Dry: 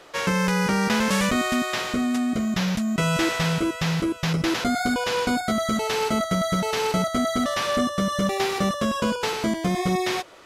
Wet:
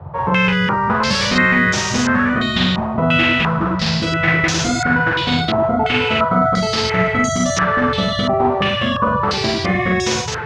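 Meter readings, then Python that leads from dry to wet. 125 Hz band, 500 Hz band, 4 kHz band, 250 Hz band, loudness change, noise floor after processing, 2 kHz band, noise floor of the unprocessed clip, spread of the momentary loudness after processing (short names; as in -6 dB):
+7.5 dB, +6.0 dB, +8.5 dB, +4.5 dB, +7.5 dB, -22 dBFS, +11.0 dB, -35 dBFS, 4 LU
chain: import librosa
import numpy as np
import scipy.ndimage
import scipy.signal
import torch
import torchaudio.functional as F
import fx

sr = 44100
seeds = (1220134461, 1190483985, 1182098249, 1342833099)

p1 = fx.dmg_noise_band(x, sr, seeds[0], low_hz=71.0, high_hz=150.0, level_db=-34.0)
p2 = fx.doubler(p1, sr, ms=44.0, db=-2)
p3 = p2 + fx.echo_single(p2, sr, ms=1045, db=-3.5, dry=0)
p4 = fx.filter_held_lowpass(p3, sr, hz=2.9, low_hz=900.0, high_hz=6300.0)
y = p4 * 10.0 ** (1.0 / 20.0)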